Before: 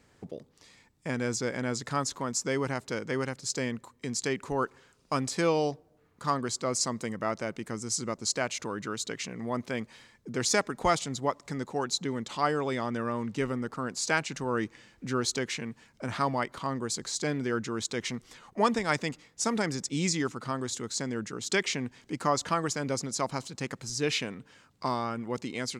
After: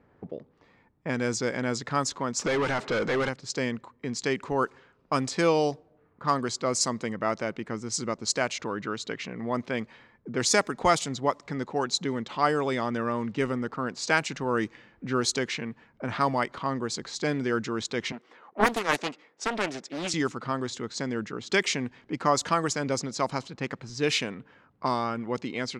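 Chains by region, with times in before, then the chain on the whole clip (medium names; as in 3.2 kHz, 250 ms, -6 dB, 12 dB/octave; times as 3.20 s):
2.39–3.29 s: compression 3:1, threshold -31 dBFS + band-stop 930 Hz, Q 15 + overdrive pedal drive 27 dB, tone 2.3 kHz, clips at -21.5 dBFS
18.12–20.14 s: Chebyshev high-pass 380 Hz + loudspeaker Doppler distortion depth 0.74 ms
whole clip: level-controlled noise filter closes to 1.3 kHz, open at -23.5 dBFS; bass shelf 120 Hz -5 dB; trim +3.5 dB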